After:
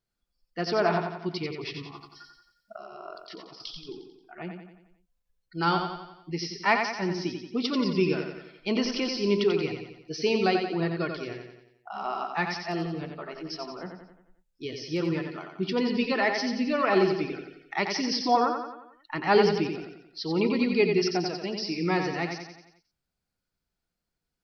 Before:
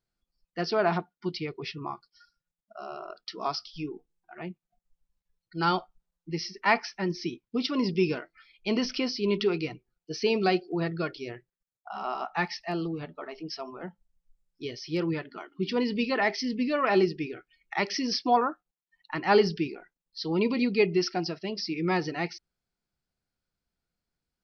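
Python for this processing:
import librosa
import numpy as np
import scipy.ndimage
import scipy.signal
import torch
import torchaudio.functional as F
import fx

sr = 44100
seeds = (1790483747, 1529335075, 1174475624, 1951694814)

y = fx.over_compress(x, sr, threshold_db=-46.0, ratio=-1.0, at=(1.82, 3.89))
y = fx.echo_feedback(y, sr, ms=89, feedback_pct=51, wet_db=-6.0)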